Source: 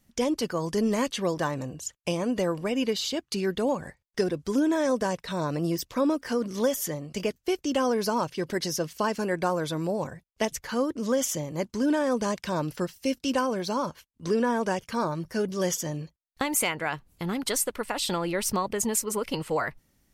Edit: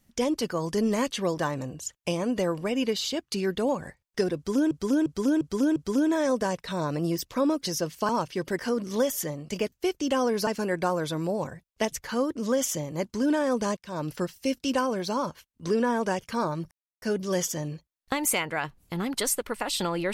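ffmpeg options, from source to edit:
-filter_complex "[0:a]asplit=11[s0][s1][s2][s3][s4][s5][s6][s7][s8][s9][s10];[s0]atrim=end=4.712[s11];[s1]atrim=start=4.358:end=4.712[s12];[s2]atrim=start=4.358:end=4.712[s13];[s3]atrim=start=4.358:end=4.712[s14];[s4]atrim=start=4.358:end=6.232[s15];[s5]atrim=start=8.608:end=9.072[s16];[s6]atrim=start=8.108:end=8.612[s17];[s7]atrim=start=6.228:end=8.112[s18];[s8]atrim=start=9.068:end=12.37,asetpts=PTS-STARTPTS,afade=t=out:st=3.298:d=0.004:c=hsin[s19];[s9]atrim=start=12.37:end=15.31,asetpts=PTS-STARTPTS,afade=t=in:d=0.33,afade=t=out:st=2.936:d=0.004:c=hsin,apad=pad_dur=0.31[s20];[s10]atrim=start=15.31,asetpts=PTS-STARTPTS,afade=t=in:d=0.004:c=hsin[s21];[s11][s12]acrossfade=d=0.004:c1=hsin:c2=hsin[s22];[s22][s13]acrossfade=d=0.004:c1=hsin:c2=hsin[s23];[s23][s14]acrossfade=d=0.004:c1=hsin:c2=hsin[s24];[s24][s15]acrossfade=d=0.004:c1=hsin:c2=hsin[s25];[s25][s16]acrossfade=d=0.004:c1=hsin:c2=hsin[s26];[s26][s17]acrossfade=d=0.004:c1=hsin:c2=hsin[s27];[s27][s18]acrossfade=d=0.004:c1=hsin:c2=hsin[s28];[s19][s20][s21]concat=n=3:v=0:a=1[s29];[s28][s29]acrossfade=d=0.004:c1=hsin:c2=hsin"

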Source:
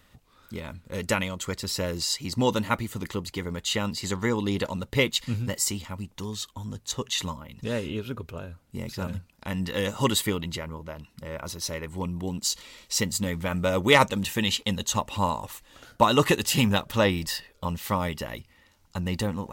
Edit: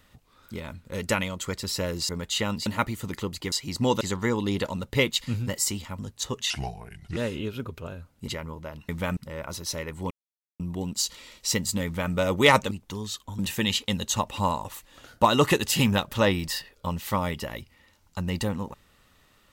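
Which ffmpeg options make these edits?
-filter_complex "[0:a]asplit=14[s0][s1][s2][s3][s4][s5][s6][s7][s8][s9][s10][s11][s12][s13];[s0]atrim=end=2.092[s14];[s1]atrim=start=3.438:end=4.012[s15];[s2]atrim=start=2.578:end=3.442[s16];[s3]atrim=start=2.088:end=2.582[s17];[s4]atrim=start=4.008:end=5.992[s18];[s5]atrim=start=6.668:end=7.184[s19];[s6]atrim=start=7.18:end=7.68,asetpts=PTS-STARTPTS,asetrate=33075,aresample=44100[s20];[s7]atrim=start=7.676:end=8.792[s21];[s8]atrim=start=10.508:end=11.122[s22];[s9]atrim=start=13.308:end=13.592[s23];[s10]atrim=start=11.118:end=12.06,asetpts=PTS-STARTPTS,afade=t=out:st=0.938:d=0.004:c=hsin,apad=pad_dur=0.49[s24];[s11]atrim=start=12.06:end=14.172,asetpts=PTS-STARTPTS,afade=t=in:d=0.004:c=hsin[s25];[s12]atrim=start=5.988:end=6.672[s26];[s13]atrim=start=14.168[s27];[s14][s15]acrossfade=d=0.004:c1=hsin:c2=hsin[s28];[s28][s16]acrossfade=d=0.004:c1=hsin:c2=hsin[s29];[s29][s17]acrossfade=d=0.004:c1=hsin:c2=hsin[s30];[s30][s18]acrossfade=d=0.004:c1=hsin:c2=hsin[s31];[s31][s19]acrossfade=d=0.004:c1=hsin:c2=hsin[s32];[s32][s20]acrossfade=d=0.004:c1=hsin:c2=hsin[s33];[s33][s21]acrossfade=d=0.004:c1=hsin:c2=hsin[s34];[s34][s22]acrossfade=d=0.004:c1=hsin:c2=hsin[s35];[s35][s23]acrossfade=d=0.004:c1=hsin:c2=hsin[s36];[s24][s25]concat=n=2:v=0:a=1[s37];[s36][s37]acrossfade=d=0.004:c1=hsin:c2=hsin[s38];[s38][s26]acrossfade=d=0.004:c1=hsin:c2=hsin[s39];[s39][s27]acrossfade=d=0.004:c1=hsin:c2=hsin"

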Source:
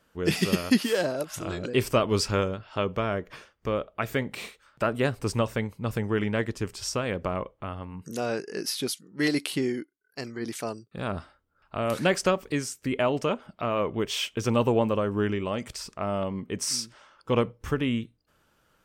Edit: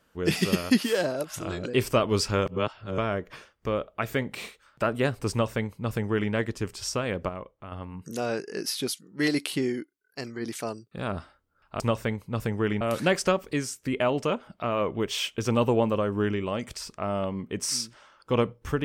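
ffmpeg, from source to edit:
-filter_complex "[0:a]asplit=7[s0][s1][s2][s3][s4][s5][s6];[s0]atrim=end=2.462[s7];[s1]atrim=start=2.458:end=2.982,asetpts=PTS-STARTPTS,areverse[s8];[s2]atrim=start=2.978:end=7.292[s9];[s3]atrim=start=7.288:end=7.722,asetpts=PTS-STARTPTS,volume=0.447[s10];[s4]atrim=start=7.718:end=11.802[s11];[s5]atrim=start=5.308:end=6.322[s12];[s6]atrim=start=11.798[s13];[s7][s8]acrossfade=d=0.004:c1=hsin:c2=hsin[s14];[s14][s9]acrossfade=d=0.004:c1=hsin:c2=hsin[s15];[s15][s10]acrossfade=d=0.004:c1=hsin:c2=hsin[s16];[s16][s11]acrossfade=d=0.004:c1=hsin:c2=hsin[s17];[s17][s12]acrossfade=d=0.004:c1=hsin:c2=hsin[s18];[s18][s13]acrossfade=d=0.004:c1=hsin:c2=hsin"

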